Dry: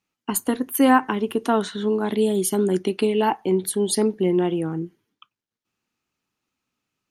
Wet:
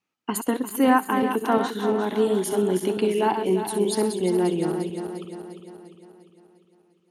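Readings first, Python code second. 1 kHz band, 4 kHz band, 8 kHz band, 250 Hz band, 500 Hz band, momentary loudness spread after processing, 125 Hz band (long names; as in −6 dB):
−0.5 dB, −2.5 dB, −5.0 dB, −2.0 dB, −0.5 dB, 13 LU, −2.5 dB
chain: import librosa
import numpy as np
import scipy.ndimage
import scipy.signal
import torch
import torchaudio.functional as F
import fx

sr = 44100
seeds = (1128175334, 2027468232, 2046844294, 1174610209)

p1 = fx.reverse_delay_fb(x, sr, ms=175, feedback_pct=72, wet_db=-7.5)
p2 = fx.highpass(p1, sr, hz=190.0, slope=6)
p3 = fx.high_shelf(p2, sr, hz=4400.0, db=-7.5)
p4 = fx.rider(p3, sr, range_db=3, speed_s=0.5)
p5 = p3 + (p4 * 10.0 ** (-2.0 / 20.0))
p6 = fx.wow_flutter(p5, sr, seeds[0], rate_hz=2.1, depth_cents=19.0)
p7 = p6 + fx.echo_wet_highpass(p6, sr, ms=64, feedback_pct=37, hz=4000.0, wet_db=-9.5, dry=0)
y = p7 * 10.0 ** (-6.0 / 20.0)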